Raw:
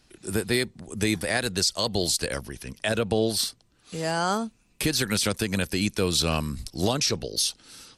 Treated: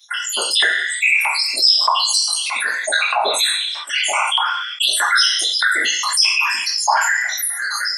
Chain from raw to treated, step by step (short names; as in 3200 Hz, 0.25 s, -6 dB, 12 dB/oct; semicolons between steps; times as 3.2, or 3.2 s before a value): random spectral dropouts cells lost 85%; LPF 9000 Hz 12 dB/oct; gate with hold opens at -53 dBFS; whisperiser; de-esser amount 35%; high shelf 6600 Hz +6.5 dB; reverb RT60 0.50 s, pre-delay 3 ms, DRR -10 dB; LFO high-pass saw up 1.6 Hz 930–3200 Hz; tilt shelf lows -9.5 dB, about 690 Hz; notch 1300 Hz, Q 6; fast leveller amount 70%; gain -9.5 dB